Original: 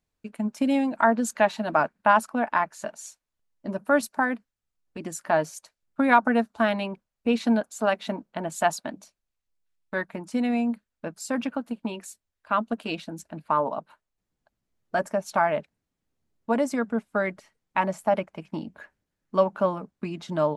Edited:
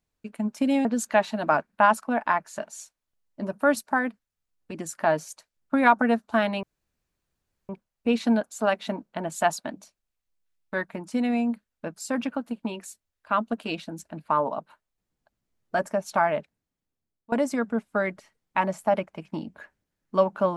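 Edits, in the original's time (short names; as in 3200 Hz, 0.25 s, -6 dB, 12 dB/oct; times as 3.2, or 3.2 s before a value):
0.85–1.11 cut
6.89 insert room tone 1.06 s
15.48–16.52 fade out, to -18.5 dB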